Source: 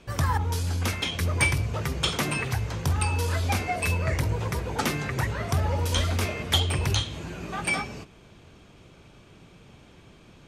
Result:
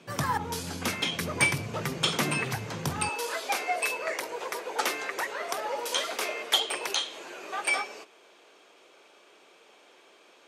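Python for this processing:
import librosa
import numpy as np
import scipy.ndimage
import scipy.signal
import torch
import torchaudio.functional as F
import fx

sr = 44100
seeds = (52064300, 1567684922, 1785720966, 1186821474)

y = fx.highpass(x, sr, hz=fx.steps((0.0, 140.0), (3.09, 400.0)), slope=24)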